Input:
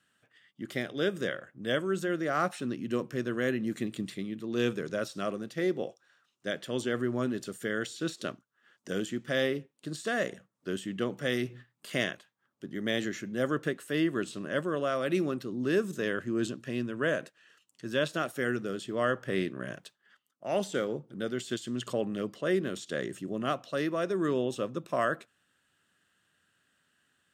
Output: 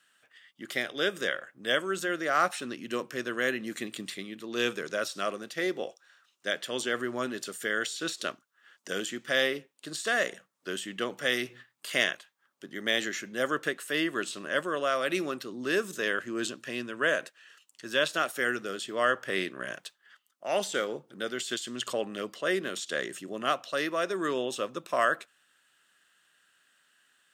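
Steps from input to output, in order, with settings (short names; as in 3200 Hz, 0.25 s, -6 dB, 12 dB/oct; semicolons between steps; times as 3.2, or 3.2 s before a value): HPF 1000 Hz 6 dB/oct; gain +7 dB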